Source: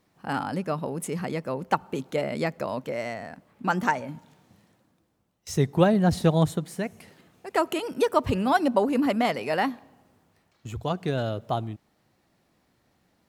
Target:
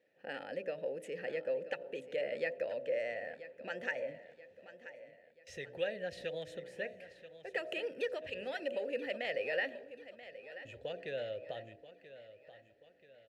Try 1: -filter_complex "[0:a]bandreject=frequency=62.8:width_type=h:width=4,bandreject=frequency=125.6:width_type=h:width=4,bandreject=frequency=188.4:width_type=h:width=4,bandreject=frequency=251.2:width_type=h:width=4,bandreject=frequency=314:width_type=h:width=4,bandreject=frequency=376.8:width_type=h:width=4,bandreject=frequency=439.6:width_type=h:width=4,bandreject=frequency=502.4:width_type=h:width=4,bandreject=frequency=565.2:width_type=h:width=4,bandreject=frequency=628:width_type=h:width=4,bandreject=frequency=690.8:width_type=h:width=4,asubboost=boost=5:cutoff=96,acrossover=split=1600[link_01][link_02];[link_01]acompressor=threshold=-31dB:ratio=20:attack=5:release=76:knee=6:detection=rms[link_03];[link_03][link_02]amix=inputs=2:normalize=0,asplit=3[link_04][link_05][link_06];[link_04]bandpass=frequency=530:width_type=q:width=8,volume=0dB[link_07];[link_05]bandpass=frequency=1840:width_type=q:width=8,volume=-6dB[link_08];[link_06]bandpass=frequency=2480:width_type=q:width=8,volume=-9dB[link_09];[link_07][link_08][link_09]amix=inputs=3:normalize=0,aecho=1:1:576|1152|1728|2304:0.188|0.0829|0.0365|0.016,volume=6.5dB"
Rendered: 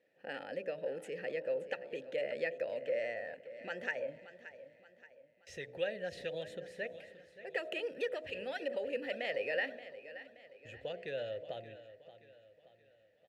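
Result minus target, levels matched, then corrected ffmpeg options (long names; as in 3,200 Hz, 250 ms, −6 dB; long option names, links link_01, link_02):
echo 407 ms early
-filter_complex "[0:a]bandreject=frequency=62.8:width_type=h:width=4,bandreject=frequency=125.6:width_type=h:width=4,bandreject=frequency=188.4:width_type=h:width=4,bandreject=frequency=251.2:width_type=h:width=4,bandreject=frequency=314:width_type=h:width=4,bandreject=frequency=376.8:width_type=h:width=4,bandreject=frequency=439.6:width_type=h:width=4,bandreject=frequency=502.4:width_type=h:width=4,bandreject=frequency=565.2:width_type=h:width=4,bandreject=frequency=628:width_type=h:width=4,bandreject=frequency=690.8:width_type=h:width=4,asubboost=boost=5:cutoff=96,acrossover=split=1600[link_01][link_02];[link_01]acompressor=threshold=-31dB:ratio=20:attack=5:release=76:knee=6:detection=rms[link_03];[link_03][link_02]amix=inputs=2:normalize=0,asplit=3[link_04][link_05][link_06];[link_04]bandpass=frequency=530:width_type=q:width=8,volume=0dB[link_07];[link_05]bandpass=frequency=1840:width_type=q:width=8,volume=-6dB[link_08];[link_06]bandpass=frequency=2480:width_type=q:width=8,volume=-9dB[link_09];[link_07][link_08][link_09]amix=inputs=3:normalize=0,aecho=1:1:983|1966|2949|3932:0.188|0.0829|0.0365|0.016,volume=6.5dB"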